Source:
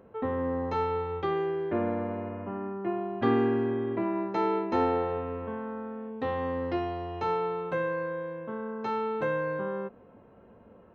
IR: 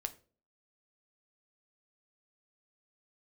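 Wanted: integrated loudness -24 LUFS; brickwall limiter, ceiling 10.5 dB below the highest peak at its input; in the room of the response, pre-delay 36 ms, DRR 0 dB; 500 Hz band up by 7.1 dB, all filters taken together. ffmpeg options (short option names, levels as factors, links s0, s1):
-filter_complex "[0:a]equalizer=f=500:t=o:g=8.5,alimiter=limit=0.112:level=0:latency=1,asplit=2[s0][s1];[1:a]atrim=start_sample=2205,adelay=36[s2];[s1][s2]afir=irnorm=-1:irlink=0,volume=1.12[s3];[s0][s3]amix=inputs=2:normalize=0"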